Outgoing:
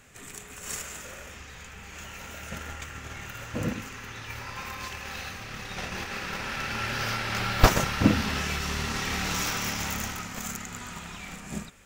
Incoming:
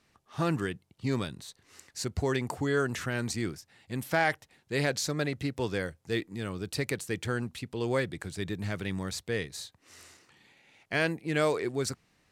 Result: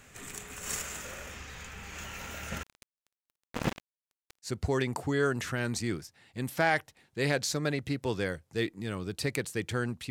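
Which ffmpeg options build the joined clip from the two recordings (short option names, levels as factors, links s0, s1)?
-filter_complex "[0:a]asettb=1/sr,asplit=3[s0][s1][s2];[s0]atrim=end=2.634[s3];[s1]atrim=start=2.63:end=4.52,asetpts=PTS-STARTPTS,afade=t=in:d=0.004:c=qsin,afade=t=out:st=1.886:d=0.004:c=qsin,acrusher=bits=3:mix=0:aa=0.5[s4];[s2]atrim=start=4.516[s5];[s3][s4]acrossfade=d=0.004:c1=hsin:c2=qsin[s6];[s6][s5]acrossfade=d=0.004:c1=qsin:c2=hsin,apad=whole_dur=10.1,atrim=end=10.1,atrim=end=4.52,asetpts=PTS-STARTPTS[s7];[1:a]atrim=start=1.96:end=7.64,asetpts=PTS-STARTPTS[s8];[s7][s8]acrossfade=d=0.1:c1=tri:c2=tri"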